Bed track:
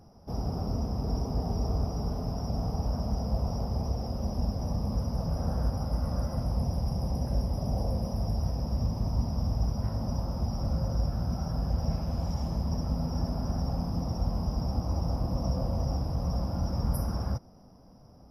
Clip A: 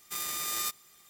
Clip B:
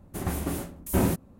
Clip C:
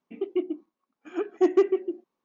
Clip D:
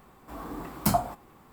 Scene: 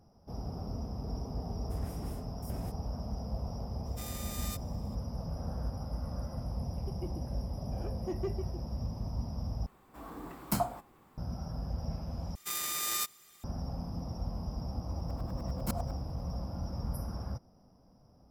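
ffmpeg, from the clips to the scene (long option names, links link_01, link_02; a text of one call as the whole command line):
ffmpeg -i bed.wav -i cue0.wav -i cue1.wav -i cue2.wav -i cue3.wav -filter_complex "[1:a]asplit=2[link_01][link_02];[4:a]asplit=2[link_03][link_04];[0:a]volume=-7.5dB[link_05];[2:a]acompressor=threshold=-24dB:ratio=6:attack=3.2:release=140:knee=1:detection=peak[link_06];[link_04]aeval=exprs='val(0)*pow(10,-36*if(lt(mod(-10*n/s,1),2*abs(-10)/1000),1-mod(-10*n/s,1)/(2*abs(-10)/1000),(mod(-10*n/s,1)-2*abs(-10)/1000)/(1-2*abs(-10)/1000))/20)':channel_layout=same[link_07];[link_05]asplit=3[link_08][link_09][link_10];[link_08]atrim=end=9.664[link_11];[link_03]atrim=end=1.52,asetpts=PTS-STARTPTS,volume=-6.5dB[link_12];[link_09]atrim=start=11.176:end=12.354[link_13];[link_02]atrim=end=1.09,asetpts=PTS-STARTPTS,volume=-0.5dB[link_14];[link_10]atrim=start=13.436[link_15];[link_06]atrim=end=1.39,asetpts=PTS-STARTPTS,volume=-17dB,afade=type=in:duration=0.004:curve=hsin,afade=type=out:start_time=1.386:duration=0.004:curve=hsin,adelay=1560[link_16];[link_01]atrim=end=1.09,asetpts=PTS-STARTPTS,volume=-10dB,afade=type=in:duration=0.004:curve=hsin,afade=type=out:start_time=1.086:duration=0.004:curve=hsin,adelay=3860[link_17];[3:a]atrim=end=2.24,asetpts=PTS-STARTPTS,volume=-17dB,afade=type=in:duration=0.004:curve=hsin,afade=type=out:start_time=2.236:duration=0.004:curve=hsin,adelay=293706S[link_18];[link_07]atrim=end=1.52,asetpts=PTS-STARTPTS,volume=-4.5dB,afade=type=in:duration=0.004:curve=hsin,afade=type=out:start_time=1.516:duration=0.004:curve=hsin,adelay=14810[link_19];[link_11][link_12]acrossfade=duration=0.004:curve1=hsin:curve2=hsin[link_20];[link_20][link_13]acrossfade=duration=0.004:curve1=hsin:curve2=hsin[link_21];[link_21][link_14]acrossfade=duration=0.004:curve1=hsin:curve2=hsin[link_22];[link_22][link_15]acrossfade=duration=0.004:curve1=hsin:curve2=hsin[link_23];[link_23][link_16][link_17][link_18][link_19]amix=inputs=5:normalize=0" out.wav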